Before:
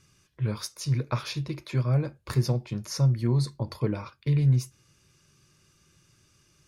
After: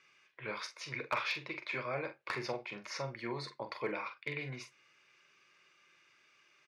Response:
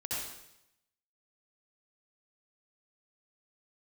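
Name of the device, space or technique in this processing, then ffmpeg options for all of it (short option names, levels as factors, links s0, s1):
megaphone: -filter_complex "[0:a]highpass=590,lowpass=3200,equalizer=f=2200:t=o:w=0.55:g=9,asoftclip=type=hard:threshold=0.0562,asplit=2[s0][s1];[s1]adelay=44,volume=0.355[s2];[s0][s2]amix=inputs=2:normalize=0"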